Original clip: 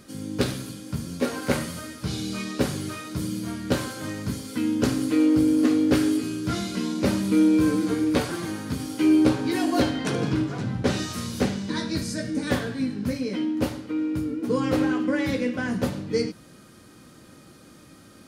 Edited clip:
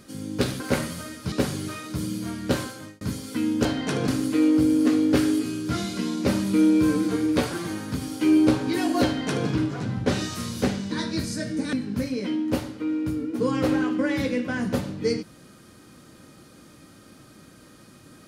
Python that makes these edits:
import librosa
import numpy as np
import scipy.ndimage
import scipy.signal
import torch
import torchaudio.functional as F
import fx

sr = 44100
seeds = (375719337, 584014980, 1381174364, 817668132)

y = fx.edit(x, sr, fx.cut(start_s=0.6, length_s=0.78),
    fx.cut(start_s=2.1, length_s=0.43),
    fx.fade_out_span(start_s=3.81, length_s=0.41),
    fx.duplicate(start_s=9.83, length_s=0.43, to_s=4.86),
    fx.cut(start_s=12.51, length_s=0.31), tone=tone)